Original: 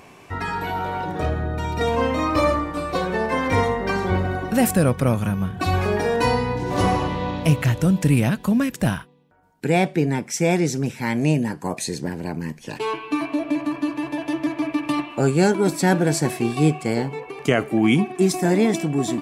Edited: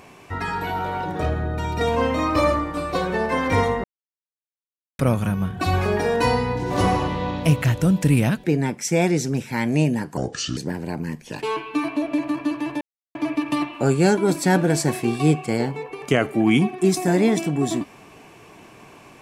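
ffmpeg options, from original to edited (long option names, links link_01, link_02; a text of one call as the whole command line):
ffmpeg -i in.wav -filter_complex "[0:a]asplit=8[link_01][link_02][link_03][link_04][link_05][link_06][link_07][link_08];[link_01]atrim=end=3.84,asetpts=PTS-STARTPTS,afade=type=out:start_time=3.836:duration=0.004:curve=hsin[link_09];[link_02]atrim=start=3.84:end=4.99,asetpts=PTS-STARTPTS,volume=0[link_10];[link_03]atrim=start=4.99:end=8.442,asetpts=PTS-STARTPTS,afade=type=in:duration=0.004:curve=hsin[link_11];[link_04]atrim=start=9.928:end=11.664[link_12];[link_05]atrim=start=11.66:end=11.94,asetpts=PTS-STARTPTS,asetrate=30870,aresample=44100[link_13];[link_06]atrim=start=11.936:end=14.18,asetpts=PTS-STARTPTS,afade=type=out:start_time=2.24:duration=0.004:curve=hsin[link_14];[link_07]atrim=start=14.18:end=14.52,asetpts=PTS-STARTPTS,volume=0[link_15];[link_08]atrim=start=14.52,asetpts=PTS-STARTPTS,afade=type=in:duration=0.004:curve=hsin[link_16];[link_09][link_10][link_11]concat=n=3:v=0:a=1[link_17];[link_17][link_12]acrossfade=duration=0.004:curve1=hsin:curve2=hsin[link_18];[link_18][link_13]acrossfade=duration=0.004:curve1=hsin:curve2=hsin[link_19];[link_14][link_15][link_16]concat=n=3:v=0:a=1[link_20];[link_19][link_20]acrossfade=duration=0.004:curve1=hsin:curve2=hsin" out.wav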